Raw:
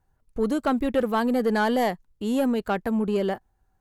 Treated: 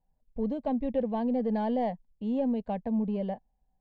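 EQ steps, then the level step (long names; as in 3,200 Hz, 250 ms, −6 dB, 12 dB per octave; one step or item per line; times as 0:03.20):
high-frequency loss of the air 98 metres
head-to-tape spacing loss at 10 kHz 31 dB
phaser with its sweep stopped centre 360 Hz, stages 6
−2.5 dB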